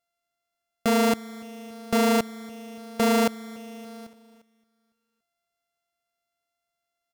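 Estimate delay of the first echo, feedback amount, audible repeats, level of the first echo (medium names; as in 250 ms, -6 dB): 285 ms, 60%, 3, -23.0 dB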